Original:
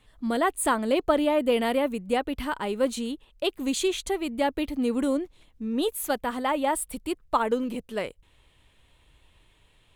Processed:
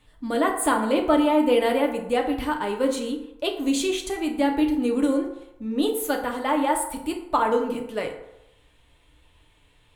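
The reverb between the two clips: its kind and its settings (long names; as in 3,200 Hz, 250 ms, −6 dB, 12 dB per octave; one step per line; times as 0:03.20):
feedback delay network reverb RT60 0.88 s, low-frequency decay 0.7×, high-frequency decay 0.5×, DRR 1.5 dB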